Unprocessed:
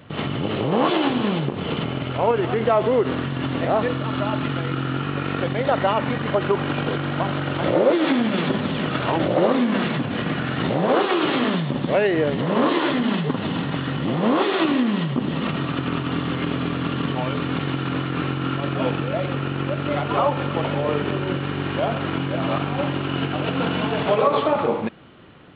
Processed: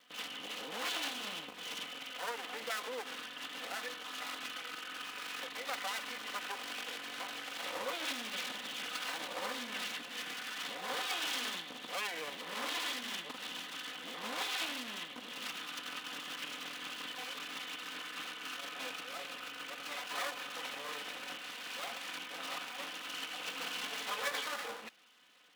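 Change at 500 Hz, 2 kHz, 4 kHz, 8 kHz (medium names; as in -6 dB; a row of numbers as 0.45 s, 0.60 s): -25.5 dB, -10.5 dB, -7.0 dB, no reading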